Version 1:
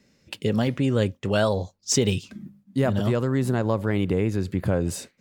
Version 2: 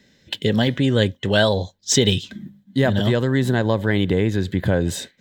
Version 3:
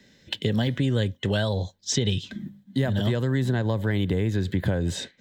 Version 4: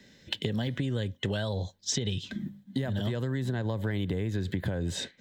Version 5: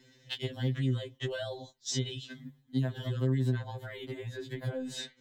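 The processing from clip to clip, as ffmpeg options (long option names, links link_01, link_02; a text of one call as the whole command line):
ffmpeg -i in.wav -af "superequalizer=10b=0.631:11b=2:13b=2.82:16b=0.562,volume=4dB" out.wav
ffmpeg -i in.wav -filter_complex "[0:a]acrossover=split=160|7500[link_01][link_02][link_03];[link_01]acompressor=threshold=-24dB:ratio=4[link_04];[link_02]acompressor=threshold=-26dB:ratio=4[link_05];[link_03]acompressor=threshold=-55dB:ratio=4[link_06];[link_04][link_05][link_06]amix=inputs=3:normalize=0" out.wav
ffmpeg -i in.wav -af "acompressor=threshold=-27dB:ratio=6" out.wav
ffmpeg -i in.wav -af "afftfilt=real='re*2.45*eq(mod(b,6),0)':imag='im*2.45*eq(mod(b,6),0)':win_size=2048:overlap=0.75,volume=-2dB" out.wav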